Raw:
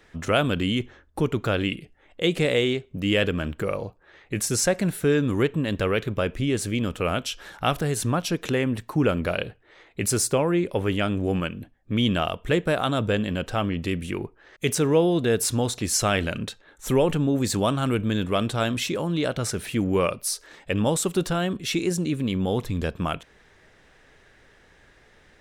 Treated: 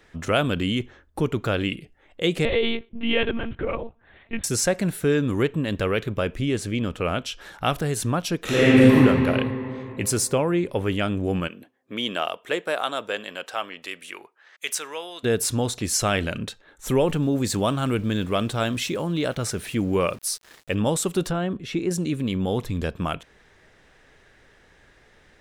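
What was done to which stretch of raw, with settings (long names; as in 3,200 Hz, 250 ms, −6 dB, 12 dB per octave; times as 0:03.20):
0:02.45–0:04.44: one-pitch LPC vocoder at 8 kHz 230 Hz
0:06.57–0:07.41: high-shelf EQ 8,100 Hz −9 dB
0:08.43–0:08.95: thrown reverb, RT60 2.9 s, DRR −11 dB
0:11.47–0:15.23: high-pass filter 310 Hz → 1,300 Hz
0:17.01–0:20.75: centre clipping without the shift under −44.5 dBFS
0:21.31–0:21.91: low-pass filter 1,500 Hz 6 dB per octave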